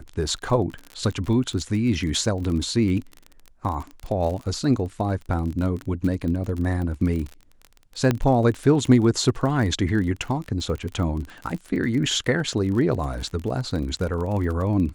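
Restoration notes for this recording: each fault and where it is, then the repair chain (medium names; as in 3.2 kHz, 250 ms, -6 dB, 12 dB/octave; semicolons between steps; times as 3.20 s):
crackle 34 per s -29 dBFS
8.11 s: pop -8 dBFS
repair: de-click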